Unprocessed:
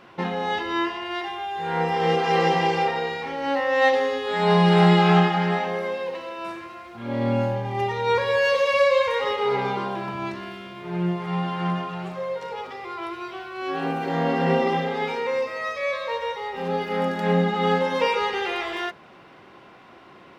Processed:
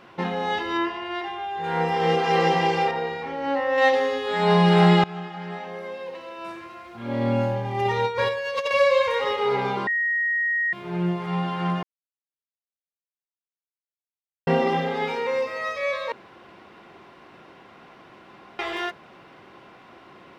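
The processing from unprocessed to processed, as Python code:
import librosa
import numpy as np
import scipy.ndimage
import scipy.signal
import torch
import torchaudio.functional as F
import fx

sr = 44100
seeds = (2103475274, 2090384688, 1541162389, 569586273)

y = fx.high_shelf(x, sr, hz=4600.0, db=-9.5, at=(0.77, 1.64))
y = fx.high_shelf(y, sr, hz=2700.0, db=-8.5, at=(2.91, 3.78))
y = fx.over_compress(y, sr, threshold_db=-24.0, ratio=-0.5, at=(7.85, 8.71))
y = fx.edit(y, sr, fx.fade_in_from(start_s=5.04, length_s=2.08, floor_db=-22.0),
    fx.bleep(start_s=9.87, length_s=0.86, hz=1880.0, db=-20.5),
    fx.silence(start_s=11.83, length_s=2.64),
    fx.room_tone_fill(start_s=16.12, length_s=2.47), tone=tone)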